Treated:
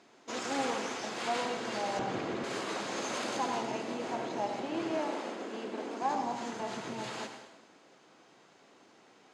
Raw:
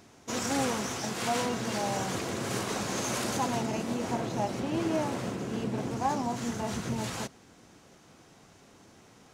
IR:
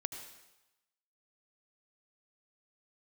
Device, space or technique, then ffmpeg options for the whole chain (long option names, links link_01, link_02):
supermarket ceiling speaker: -filter_complex "[0:a]bandreject=frequency=5700:width=13,asettb=1/sr,asplit=3[link_01][link_02][link_03];[link_01]atrim=end=4.984[link_04];[link_02]atrim=start=4.98:end=6.02,asetpts=PTS-STARTPTS,afade=type=in:duration=0.004:curve=qsin,afade=type=out:start_time=1.036:duration=0.004:curve=qsin,highpass=frequency=220:width=0.5412,highpass=frequency=220:width=1.3066[link_05];[link_03]atrim=start=6.016[link_06];[link_04][link_05]acrossfade=duration=0.004:curve1=hsin:curve2=qsin[link_07];[link_07][link_06]acrossfade=duration=0.004:curve1=qsin:curve2=hsin,highpass=300,lowpass=5600[link_08];[1:a]atrim=start_sample=2205[link_09];[link_08][link_09]afir=irnorm=-1:irlink=0,asettb=1/sr,asplit=3[link_10][link_11][link_12];[link_10]atrim=end=1.994[link_13];[link_11]atrim=start=1.99:end=2.44,asetpts=PTS-STARTPTS,afade=type=in:duration=0.004:curve=qsin,afade=type=out:start_time=0.446:duration=0.004:curve=qsin,aemphasis=mode=reproduction:type=bsi[link_14];[link_12]atrim=start=2.436[link_15];[link_13][link_14]acrossfade=duration=0.004:curve1=hsin:curve2=qsin[link_16];[link_16][link_15]acrossfade=duration=0.004:curve1=qsin:curve2=hsin,volume=-1.5dB"